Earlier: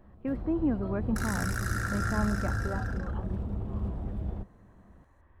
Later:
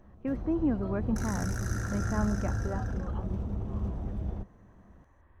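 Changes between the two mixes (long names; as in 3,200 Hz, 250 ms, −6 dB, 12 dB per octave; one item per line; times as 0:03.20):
second sound −7.5 dB
master: add parametric band 6,100 Hz +13.5 dB 0.21 octaves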